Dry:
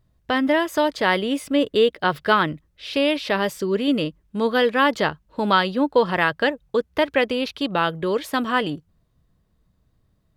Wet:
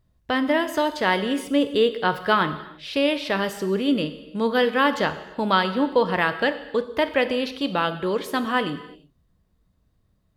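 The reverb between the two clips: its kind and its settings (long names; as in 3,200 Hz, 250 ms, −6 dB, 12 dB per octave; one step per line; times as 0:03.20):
reverb whose tail is shaped and stops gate 370 ms falling, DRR 9.5 dB
level −2 dB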